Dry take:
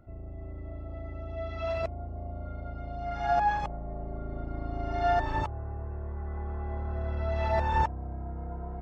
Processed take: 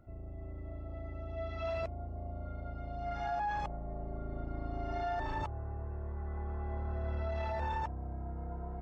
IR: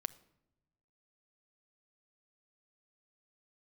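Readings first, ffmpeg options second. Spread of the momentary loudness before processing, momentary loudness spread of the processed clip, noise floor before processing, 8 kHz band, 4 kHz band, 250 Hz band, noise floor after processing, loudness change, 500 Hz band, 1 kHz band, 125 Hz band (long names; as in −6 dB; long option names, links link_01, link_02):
13 LU, 8 LU, −41 dBFS, can't be measured, −6.5 dB, −4.5 dB, −44 dBFS, −6.5 dB, −6.5 dB, −8.0 dB, −5.0 dB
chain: -af "alimiter=level_in=1dB:limit=-24dB:level=0:latency=1:release=12,volume=-1dB,volume=-3.5dB"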